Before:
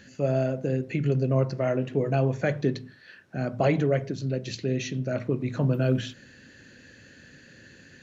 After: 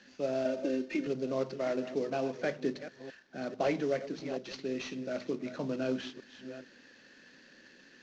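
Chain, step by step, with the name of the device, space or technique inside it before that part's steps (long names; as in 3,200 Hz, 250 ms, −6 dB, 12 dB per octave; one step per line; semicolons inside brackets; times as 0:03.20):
delay that plays each chunk backwards 443 ms, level −12 dB
early wireless headset (high-pass filter 210 Hz 24 dB per octave; variable-slope delta modulation 32 kbit/s)
0:00.45–0:01.07: comb filter 3.3 ms, depth 96%
level −6 dB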